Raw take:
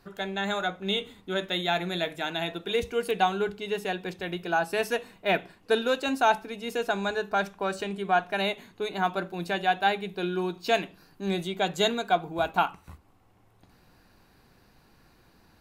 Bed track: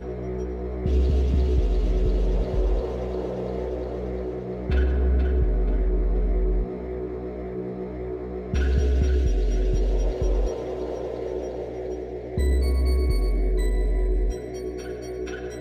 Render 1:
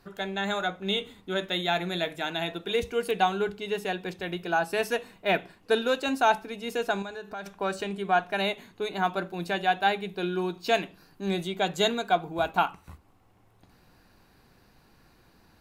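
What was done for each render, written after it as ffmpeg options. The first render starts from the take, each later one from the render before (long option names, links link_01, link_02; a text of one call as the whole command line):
ffmpeg -i in.wav -filter_complex "[0:a]asettb=1/sr,asplit=3[link_01][link_02][link_03];[link_01]atrim=end=7.024[link_04];[link_02]atrim=start=7.02:end=7.46,asetpts=PTS-STARTPTS,afade=type=in:duration=0.004:curve=qsin,afade=type=out:start_time=0.436:duration=0.004:curve=qsin,acompressor=threshold=-39dB:ratio=2.5:attack=3.2:release=140:knee=1:detection=peak[link_05];[link_03]atrim=start=7.456[link_06];[link_04][link_05]acrossfade=duration=0.004:curve1=hsin:curve2=qsin[link_07];[link_07][link_06]acrossfade=duration=0.004:curve1=qsin:curve2=hsin" out.wav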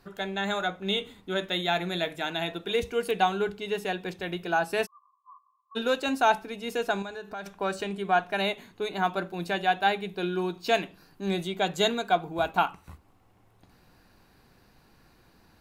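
ffmpeg -i in.wav -filter_complex "[0:a]asplit=3[link_01][link_02][link_03];[link_01]afade=type=out:start_time=4.85:duration=0.02[link_04];[link_02]asuperpass=centerf=1100:order=20:qfactor=5.4,afade=type=in:start_time=4.85:duration=0.02,afade=type=out:start_time=5.75:duration=0.02[link_05];[link_03]afade=type=in:start_time=5.75:duration=0.02[link_06];[link_04][link_05][link_06]amix=inputs=3:normalize=0" out.wav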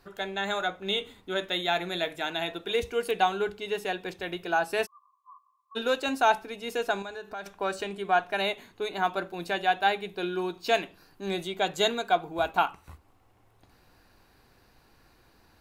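ffmpeg -i in.wav -af "equalizer=frequency=180:width_type=o:width=0.9:gain=-6.5" out.wav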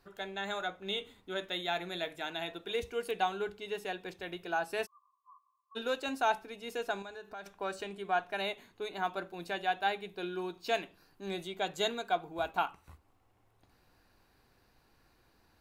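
ffmpeg -i in.wav -af "volume=-7dB" out.wav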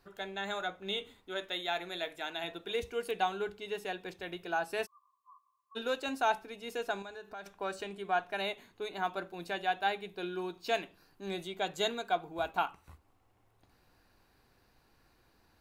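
ffmpeg -i in.wav -filter_complex "[0:a]asettb=1/sr,asplit=3[link_01][link_02][link_03];[link_01]atrim=end=1.164[link_04];[link_02]atrim=start=1.16:end=2.44,asetpts=PTS-STARTPTS,afade=type=in:duration=0.004:curve=qsin,afade=type=out:start_time=1.276:duration=0.004:curve=qsin,equalizer=frequency=150:width_type=o:width=1.6:gain=-7.5[link_05];[link_03]atrim=start=2.436[link_06];[link_04][link_05]acrossfade=duration=0.004:curve1=hsin:curve2=qsin[link_07];[link_07][link_06]acrossfade=duration=0.004:curve1=qsin:curve2=hsin" out.wav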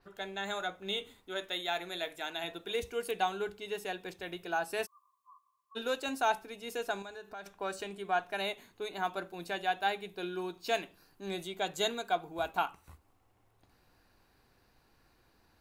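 ffmpeg -i in.wav -af "adynamicequalizer=threshold=0.00224:dfrequency=5700:dqfactor=0.7:tfrequency=5700:tqfactor=0.7:attack=5:release=100:ratio=0.375:range=3:mode=boostabove:tftype=highshelf" out.wav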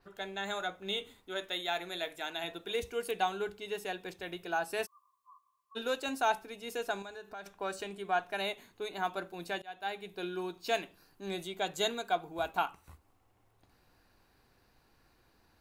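ffmpeg -i in.wav -filter_complex "[0:a]asplit=2[link_01][link_02];[link_01]atrim=end=9.62,asetpts=PTS-STARTPTS,afade=type=out:start_time=9.616:duration=0.004:curve=hsin:silence=0.0668344[link_03];[link_02]atrim=start=9.62,asetpts=PTS-STARTPTS,afade=type=in:duration=0.54:silence=0.0668344[link_04];[link_03][link_04]concat=n=2:v=0:a=1" out.wav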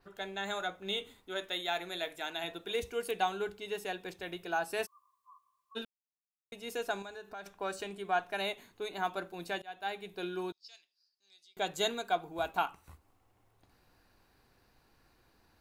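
ffmpeg -i in.wav -filter_complex "[0:a]asettb=1/sr,asplit=3[link_01][link_02][link_03];[link_01]atrim=end=10.524[link_04];[link_02]atrim=start=10.52:end=11.57,asetpts=PTS-STARTPTS,afade=type=in:duration=0.004:curve=qsin,afade=type=out:start_time=1.046:duration=0.004:curve=qsin,bandpass=frequency=5000:width_type=q:width=9.7[link_05];[link_03]atrim=start=11.566[link_06];[link_04][link_05]acrossfade=duration=0.004:curve1=hsin:curve2=qsin[link_07];[link_07][link_06]acrossfade=duration=0.004:curve1=qsin:curve2=hsin,asplit=3[link_08][link_09][link_10];[link_08]atrim=end=5.85,asetpts=PTS-STARTPTS,afade=type=out:start_time=5.846:duration=0.004:curve=hsin[link_11];[link_09]atrim=start=5.85:end=6.52,asetpts=PTS-STARTPTS,volume=0[link_12];[link_10]atrim=start=6.52,asetpts=PTS-STARTPTS,afade=type=in:duration=0.004:curve=hsin[link_13];[link_11][link_12][link_13]concat=n=3:v=0:a=1" out.wav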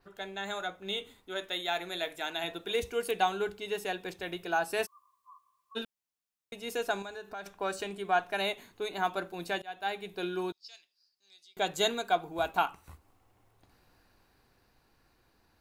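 ffmpeg -i in.wav -af "dynaudnorm=framelen=110:gausssize=31:maxgain=3.5dB" out.wav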